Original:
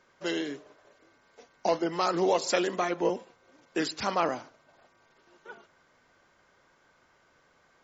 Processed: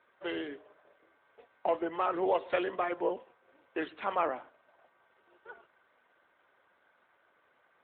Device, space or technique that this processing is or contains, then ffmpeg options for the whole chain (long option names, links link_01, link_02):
telephone: -af "highpass=360,lowpass=3300,volume=-2dB" -ar 8000 -c:a libopencore_amrnb -b:a 12200